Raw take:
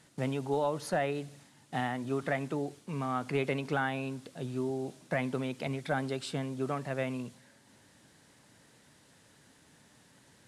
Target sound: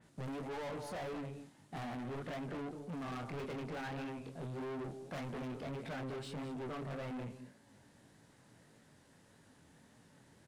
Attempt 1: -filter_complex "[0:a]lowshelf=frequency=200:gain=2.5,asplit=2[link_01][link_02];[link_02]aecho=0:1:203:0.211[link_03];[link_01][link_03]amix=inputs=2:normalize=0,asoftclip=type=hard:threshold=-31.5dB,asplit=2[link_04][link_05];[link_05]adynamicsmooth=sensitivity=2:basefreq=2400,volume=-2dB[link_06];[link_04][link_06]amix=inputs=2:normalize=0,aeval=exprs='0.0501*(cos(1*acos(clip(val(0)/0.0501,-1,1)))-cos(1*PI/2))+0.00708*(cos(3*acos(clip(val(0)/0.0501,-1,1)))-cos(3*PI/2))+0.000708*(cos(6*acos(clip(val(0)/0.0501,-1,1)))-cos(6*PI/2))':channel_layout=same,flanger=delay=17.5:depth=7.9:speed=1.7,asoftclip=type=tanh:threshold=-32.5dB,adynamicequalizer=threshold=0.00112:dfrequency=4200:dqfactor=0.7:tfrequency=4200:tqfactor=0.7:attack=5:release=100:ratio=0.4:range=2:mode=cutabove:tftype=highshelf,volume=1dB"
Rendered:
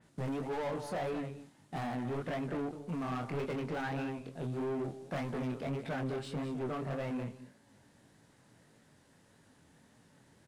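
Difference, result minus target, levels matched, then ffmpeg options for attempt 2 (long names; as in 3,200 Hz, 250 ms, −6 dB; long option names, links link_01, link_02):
soft clipping: distortion −7 dB
-filter_complex "[0:a]lowshelf=frequency=200:gain=2.5,asplit=2[link_01][link_02];[link_02]aecho=0:1:203:0.211[link_03];[link_01][link_03]amix=inputs=2:normalize=0,asoftclip=type=hard:threshold=-31.5dB,asplit=2[link_04][link_05];[link_05]adynamicsmooth=sensitivity=2:basefreq=2400,volume=-2dB[link_06];[link_04][link_06]amix=inputs=2:normalize=0,aeval=exprs='0.0501*(cos(1*acos(clip(val(0)/0.0501,-1,1)))-cos(1*PI/2))+0.00708*(cos(3*acos(clip(val(0)/0.0501,-1,1)))-cos(3*PI/2))+0.000708*(cos(6*acos(clip(val(0)/0.0501,-1,1)))-cos(6*PI/2))':channel_layout=same,flanger=delay=17.5:depth=7.9:speed=1.7,asoftclip=type=tanh:threshold=-41dB,adynamicequalizer=threshold=0.00112:dfrequency=4200:dqfactor=0.7:tfrequency=4200:tqfactor=0.7:attack=5:release=100:ratio=0.4:range=2:mode=cutabove:tftype=highshelf,volume=1dB"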